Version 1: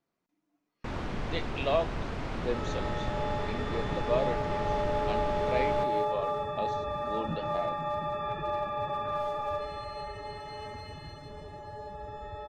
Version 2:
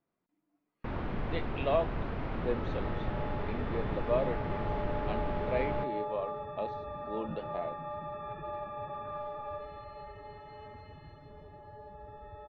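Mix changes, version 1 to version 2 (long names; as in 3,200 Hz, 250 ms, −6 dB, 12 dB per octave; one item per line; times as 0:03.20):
second sound −6.0 dB
master: add high-frequency loss of the air 330 metres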